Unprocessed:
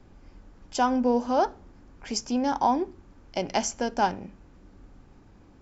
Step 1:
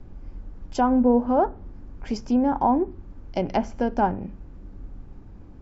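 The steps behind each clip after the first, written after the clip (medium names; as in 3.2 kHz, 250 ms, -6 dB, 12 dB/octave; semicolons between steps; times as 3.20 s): low-pass that closes with the level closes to 1.7 kHz, closed at -21.5 dBFS; tilt EQ -2.5 dB/octave; trim +1 dB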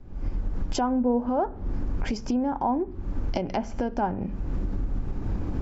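recorder AGC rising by 65 dB/s; trim -5 dB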